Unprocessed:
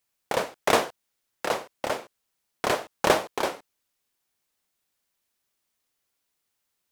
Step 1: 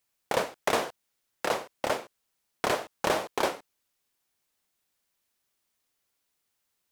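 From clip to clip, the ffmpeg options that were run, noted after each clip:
ffmpeg -i in.wav -af "alimiter=limit=-12.5dB:level=0:latency=1:release=131" out.wav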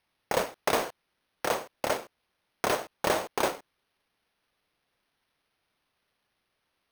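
ffmpeg -i in.wav -af "acrusher=samples=6:mix=1:aa=0.000001" out.wav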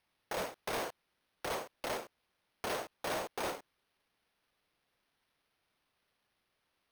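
ffmpeg -i in.wav -af "volume=31dB,asoftclip=hard,volume=-31dB,volume=-2.5dB" out.wav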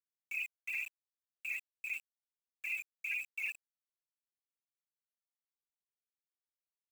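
ffmpeg -i in.wav -af "lowpass=frequency=2600:width_type=q:width=0.5098,lowpass=frequency=2600:width_type=q:width=0.6013,lowpass=frequency=2600:width_type=q:width=0.9,lowpass=frequency=2600:width_type=q:width=2.563,afreqshift=-3100,afftfilt=real='re*gte(hypot(re,im),0.0501)':imag='im*gte(hypot(re,im),0.0501)':win_size=1024:overlap=0.75,aeval=exprs='val(0)*gte(abs(val(0)),0.00398)':channel_layout=same,volume=2dB" out.wav

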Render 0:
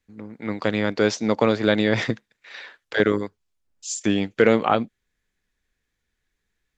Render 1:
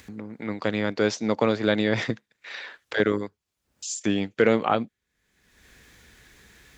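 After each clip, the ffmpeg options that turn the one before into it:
ffmpeg -i in.wav -af "highpass=55,acompressor=mode=upward:threshold=-27dB:ratio=2.5,volume=-3dB" out.wav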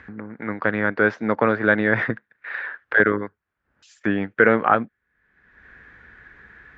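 ffmpeg -i in.wav -af "lowpass=frequency=1600:width_type=q:width=3.7,volume=1.5dB" out.wav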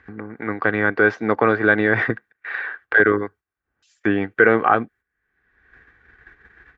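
ffmpeg -i in.wav -filter_complex "[0:a]agate=range=-11dB:threshold=-46dB:ratio=16:detection=peak,aecho=1:1:2.6:0.37,asplit=2[link_01][link_02];[link_02]alimiter=limit=-8.5dB:level=0:latency=1:release=34,volume=0dB[link_03];[link_01][link_03]amix=inputs=2:normalize=0,volume=-3.5dB" out.wav

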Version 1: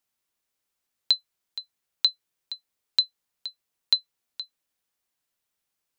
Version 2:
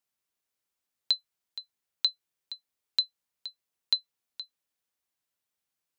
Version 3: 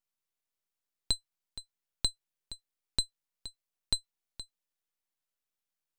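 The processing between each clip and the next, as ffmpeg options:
ffmpeg -i in.wav -af "highpass=42,volume=-4.5dB" out.wav
ffmpeg -i in.wav -af "aeval=exprs='max(val(0),0)':channel_layout=same" out.wav

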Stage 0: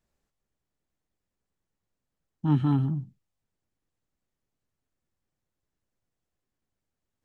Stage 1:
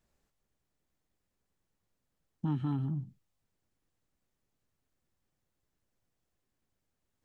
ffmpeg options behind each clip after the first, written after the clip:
ffmpeg -i in.wav -af "acompressor=threshold=-35dB:ratio=3,volume=2dB" out.wav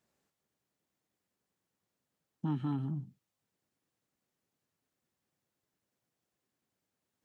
ffmpeg -i in.wav -af "highpass=140" out.wav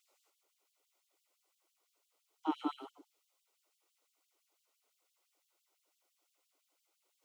ffmpeg -i in.wav -af "asuperstop=centerf=1700:order=4:qfactor=4.1,afftfilt=real='re*gte(b*sr/1024,280*pow(2900/280,0.5+0.5*sin(2*PI*5.9*pts/sr)))':imag='im*gte(b*sr/1024,280*pow(2900/280,0.5+0.5*sin(2*PI*5.9*pts/sr)))':win_size=1024:overlap=0.75,volume=8dB" out.wav

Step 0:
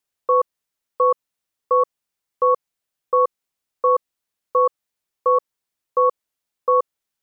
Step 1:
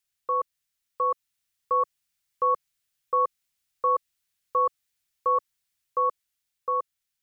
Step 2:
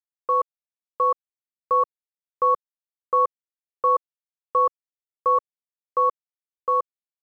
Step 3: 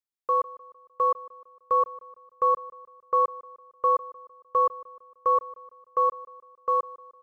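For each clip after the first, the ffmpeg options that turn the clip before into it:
ffmpeg -i in.wav -af "dynaudnorm=framelen=290:gausssize=9:maxgain=3dB,equalizer=frequency=250:width_type=o:width=1:gain=-8,equalizer=frequency=500:width_type=o:width=1:gain=-12,equalizer=frequency=1000:width_type=o:width=1:gain=-7,volume=1.5dB" out.wav
ffmpeg -i in.wav -filter_complex "[0:a]asplit=2[link_01][link_02];[link_02]alimiter=limit=-22.5dB:level=0:latency=1,volume=1.5dB[link_03];[link_01][link_03]amix=inputs=2:normalize=0,aeval=exprs='sgn(val(0))*max(abs(val(0))-0.00168,0)':channel_layout=same" out.wav
ffmpeg -i in.wav -af "aecho=1:1:152|304|456|608:0.112|0.055|0.0269|0.0132,volume=-2.5dB" out.wav

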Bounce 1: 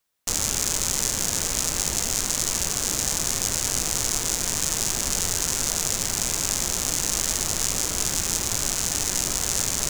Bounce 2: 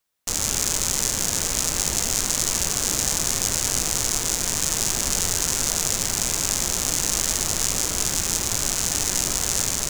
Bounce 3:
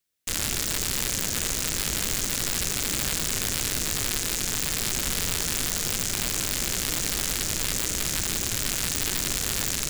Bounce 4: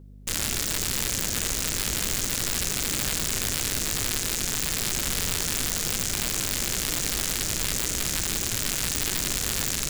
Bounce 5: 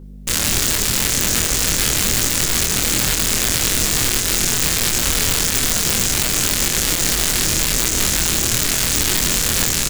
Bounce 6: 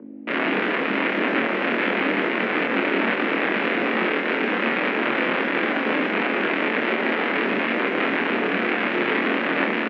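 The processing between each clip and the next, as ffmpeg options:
ffmpeg -i in.wav -af "dynaudnorm=framelen=270:gausssize=3:maxgain=11.5dB,volume=-1dB" out.wav
ffmpeg -i in.wav -filter_complex "[0:a]acrossover=split=630|1400[link_01][link_02][link_03];[link_02]aeval=exprs='val(0)*sin(2*PI*790*n/s)':channel_layout=same[link_04];[link_03]aeval=exprs='(mod(2.66*val(0)+1,2)-1)/2.66':channel_layout=same[link_05];[link_01][link_04][link_05]amix=inputs=3:normalize=0,volume=-2dB" out.wav
ffmpeg -i in.wav -filter_complex "[0:a]acrossover=split=480[link_01][link_02];[link_01]acompressor=mode=upward:threshold=-37dB:ratio=2.5[link_03];[link_03][link_02]amix=inputs=2:normalize=0,aeval=exprs='val(0)+0.00562*(sin(2*PI*50*n/s)+sin(2*PI*2*50*n/s)/2+sin(2*PI*3*50*n/s)/3+sin(2*PI*4*50*n/s)/4+sin(2*PI*5*50*n/s)/5)':channel_layout=same" out.wav
ffmpeg -i in.wav -filter_complex "[0:a]asplit=2[link_01][link_02];[link_02]adelay=25,volume=-2.5dB[link_03];[link_01][link_03]amix=inputs=2:normalize=0,alimiter=level_in=9.5dB:limit=-1dB:release=50:level=0:latency=1,volume=-1dB" out.wav
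ffmpeg -i in.wav -filter_complex "[0:a]asplit=2[link_01][link_02];[link_02]adelay=39,volume=-11.5dB[link_03];[link_01][link_03]amix=inputs=2:normalize=0,highpass=frequency=150:width_type=q:width=0.5412,highpass=frequency=150:width_type=q:width=1.307,lowpass=frequency=2400:width_type=q:width=0.5176,lowpass=frequency=2400:width_type=q:width=0.7071,lowpass=frequency=2400:width_type=q:width=1.932,afreqshift=73,volume=4dB" out.wav

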